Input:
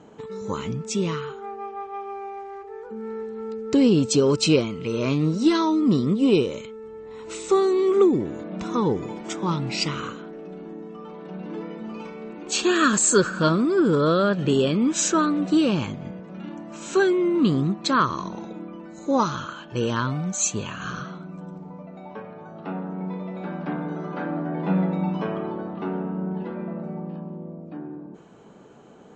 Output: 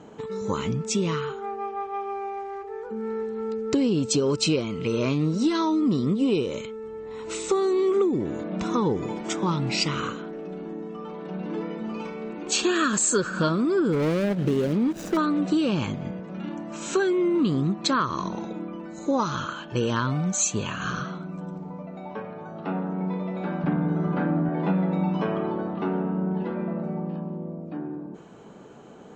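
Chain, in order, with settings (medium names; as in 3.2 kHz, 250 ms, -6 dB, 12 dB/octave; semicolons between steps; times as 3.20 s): 13.92–15.17 s: median filter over 41 samples; 23.64–24.49 s: tone controls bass +10 dB, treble -7 dB; compression 4:1, threshold -23 dBFS, peak gain reduction 9 dB; trim +2.5 dB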